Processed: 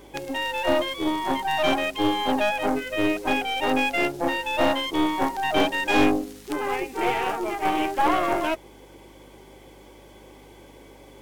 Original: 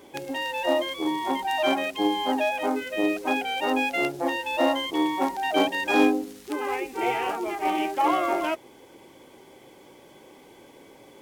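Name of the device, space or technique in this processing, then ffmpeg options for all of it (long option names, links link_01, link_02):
valve amplifier with mains hum: -af "aeval=exprs='(tanh(7.94*val(0)+0.65)-tanh(0.65))/7.94':channel_layout=same,aeval=exprs='val(0)+0.00126*(sin(2*PI*50*n/s)+sin(2*PI*2*50*n/s)/2+sin(2*PI*3*50*n/s)/3+sin(2*PI*4*50*n/s)/4+sin(2*PI*5*50*n/s)/5)':channel_layout=same,volume=5dB"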